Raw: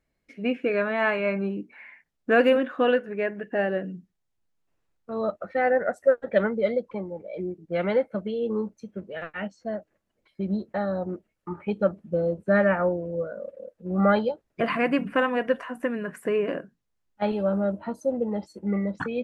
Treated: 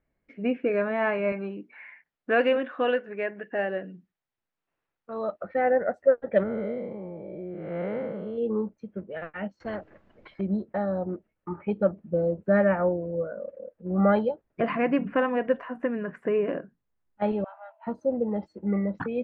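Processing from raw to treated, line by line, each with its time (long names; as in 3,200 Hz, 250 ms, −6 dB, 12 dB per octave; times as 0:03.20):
0:01.32–0:05.42: spectral tilt +3 dB per octave
0:06.43–0:08.38: spectrum smeared in time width 295 ms
0:09.60–0:10.41: every bin compressed towards the loudest bin 2 to 1
0:17.44–0:17.87: Chebyshev high-pass with heavy ripple 640 Hz, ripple 9 dB
whole clip: low-pass filter 2,100 Hz 12 dB per octave; dynamic equaliser 1,400 Hz, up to −4 dB, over −39 dBFS, Q 1.6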